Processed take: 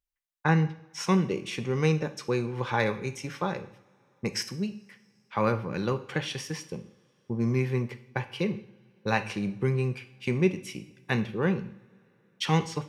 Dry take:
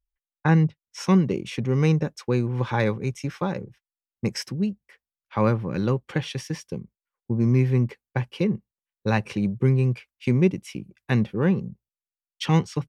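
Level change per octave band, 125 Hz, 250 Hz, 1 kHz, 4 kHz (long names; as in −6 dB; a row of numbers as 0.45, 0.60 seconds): −7.0, −6.0, −0.5, +0.5 decibels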